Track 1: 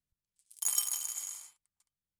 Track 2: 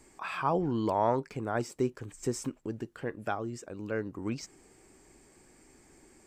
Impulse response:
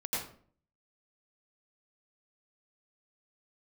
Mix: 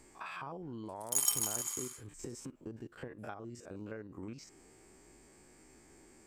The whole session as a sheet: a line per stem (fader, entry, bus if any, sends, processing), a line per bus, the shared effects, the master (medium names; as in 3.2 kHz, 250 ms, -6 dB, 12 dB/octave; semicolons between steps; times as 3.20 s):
0.0 dB, 0.50 s, no send, LFO high-pass saw up 0.45 Hz 280–3000 Hz
0.0 dB, 0.00 s, no send, spectrogram pixelated in time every 50 ms; compression 10:1, threshold -41 dBFS, peak gain reduction 18.5 dB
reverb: none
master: none